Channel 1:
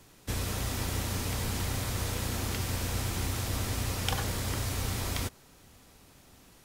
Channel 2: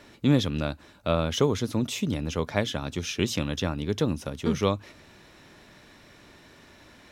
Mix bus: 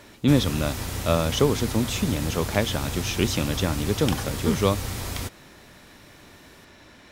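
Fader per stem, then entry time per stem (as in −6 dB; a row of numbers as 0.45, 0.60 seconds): +1.5, +2.5 decibels; 0.00, 0.00 seconds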